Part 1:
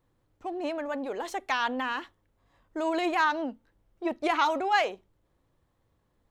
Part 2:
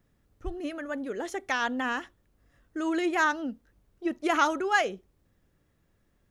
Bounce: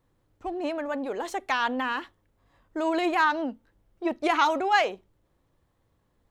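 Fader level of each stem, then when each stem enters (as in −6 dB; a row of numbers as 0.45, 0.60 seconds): +1.5, −15.5 decibels; 0.00, 0.00 seconds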